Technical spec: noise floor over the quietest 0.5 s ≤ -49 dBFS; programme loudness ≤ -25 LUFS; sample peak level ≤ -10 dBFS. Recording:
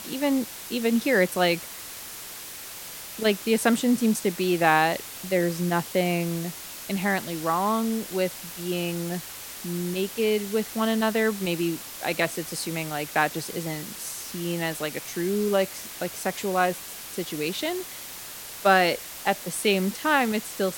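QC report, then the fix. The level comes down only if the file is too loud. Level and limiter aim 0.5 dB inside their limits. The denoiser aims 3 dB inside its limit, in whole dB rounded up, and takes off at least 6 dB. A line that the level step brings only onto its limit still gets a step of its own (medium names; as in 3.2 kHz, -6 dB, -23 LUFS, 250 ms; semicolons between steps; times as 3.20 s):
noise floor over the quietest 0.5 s -39 dBFS: fail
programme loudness -26.0 LUFS: pass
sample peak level -4.5 dBFS: fail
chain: noise reduction 13 dB, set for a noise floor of -39 dBFS; peak limiter -10.5 dBFS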